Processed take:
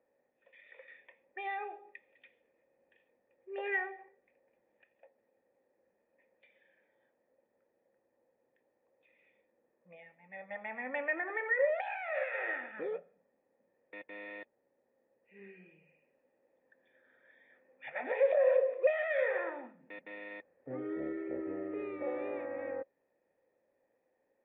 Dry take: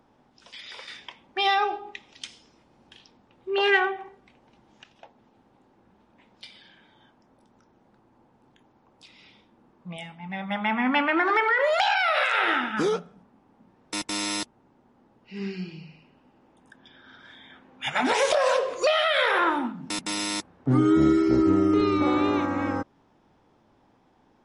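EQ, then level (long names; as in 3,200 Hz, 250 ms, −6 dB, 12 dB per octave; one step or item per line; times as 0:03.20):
dynamic equaliser 730 Hz, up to +5 dB, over −40 dBFS, Q 2.4
formant resonators in series e
low-shelf EQ 250 Hz −11.5 dB
0.0 dB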